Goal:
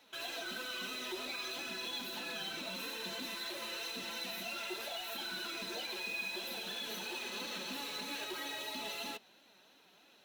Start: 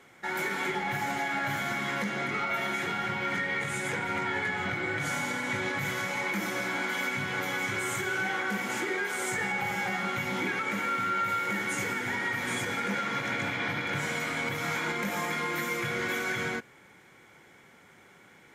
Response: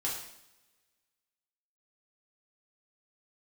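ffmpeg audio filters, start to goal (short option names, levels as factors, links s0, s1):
-filter_complex "[0:a]flanger=delay=6.3:depth=3.6:regen=33:speed=1.7:shape=sinusoidal,asetrate=79821,aresample=44100,asplit=2[s0][s1];[s1]aeval=exprs='(mod(53.1*val(0)+1,2)-1)/53.1':c=same,volume=0.355[s2];[s0][s2]amix=inputs=2:normalize=0,volume=0.447"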